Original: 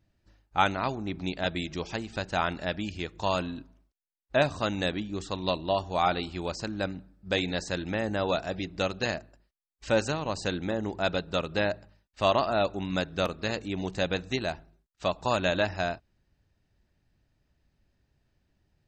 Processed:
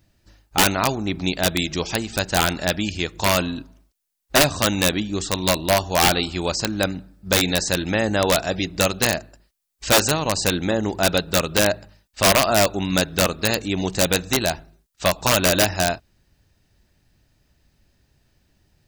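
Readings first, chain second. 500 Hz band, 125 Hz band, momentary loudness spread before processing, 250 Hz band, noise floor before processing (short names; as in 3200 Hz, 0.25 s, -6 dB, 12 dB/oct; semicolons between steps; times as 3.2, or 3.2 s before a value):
+7.0 dB, +9.0 dB, 8 LU, +8.5 dB, -77 dBFS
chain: high shelf 4300 Hz +10 dB; wrapped overs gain 16.5 dB; gain +8.5 dB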